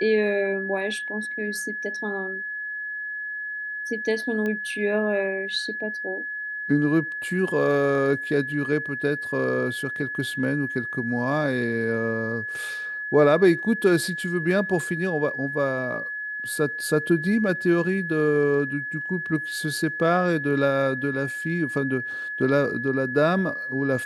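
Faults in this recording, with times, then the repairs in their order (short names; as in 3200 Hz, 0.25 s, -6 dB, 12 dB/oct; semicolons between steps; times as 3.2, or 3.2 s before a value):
tone 1700 Hz -29 dBFS
4.46 pop -18 dBFS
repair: de-click; notch 1700 Hz, Q 30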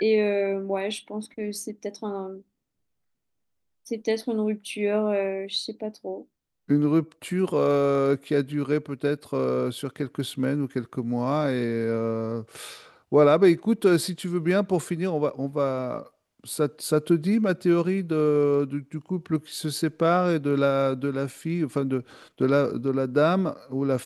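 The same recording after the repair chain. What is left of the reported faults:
none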